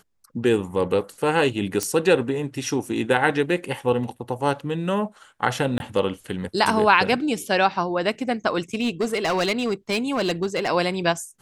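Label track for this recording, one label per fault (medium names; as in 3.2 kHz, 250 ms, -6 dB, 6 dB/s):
1.830000	1.830000	pop -9 dBFS
5.780000	5.800000	dropout 21 ms
8.740000	10.680000	clipped -18 dBFS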